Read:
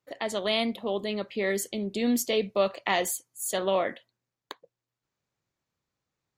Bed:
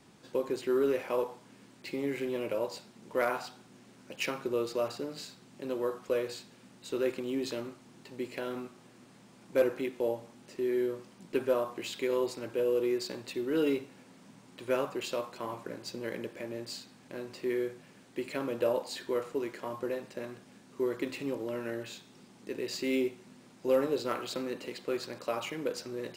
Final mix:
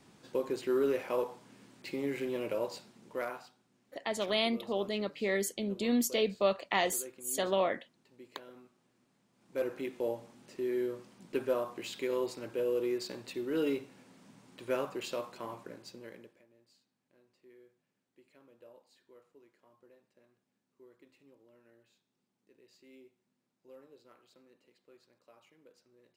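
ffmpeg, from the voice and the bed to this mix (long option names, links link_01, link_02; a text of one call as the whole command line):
ffmpeg -i stem1.wav -i stem2.wav -filter_complex "[0:a]adelay=3850,volume=-3.5dB[link_01];[1:a]volume=12dB,afade=type=out:start_time=2.71:duration=0.85:silence=0.177828,afade=type=in:start_time=9.33:duration=0.58:silence=0.211349,afade=type=out:start_time=15.32:duration=1.13:silence=0.0595662[link_02];[link_01][link_02]amix=inputs=2:normalize=0" out.wav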